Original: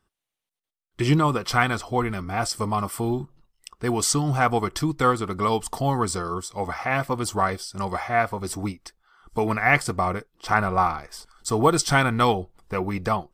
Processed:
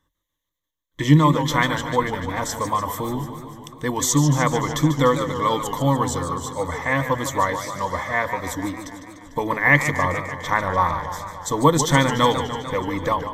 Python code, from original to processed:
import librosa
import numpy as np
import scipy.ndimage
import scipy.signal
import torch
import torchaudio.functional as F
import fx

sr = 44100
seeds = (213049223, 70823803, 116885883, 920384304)

y = fx.ripple_eq(x, sr, per_octave=1.1, db=15)
y = fx.echo_warbled(y, sr, ms=148, feedback_pct=70, rate_hz=2.8, cents=153, wet_db=-10)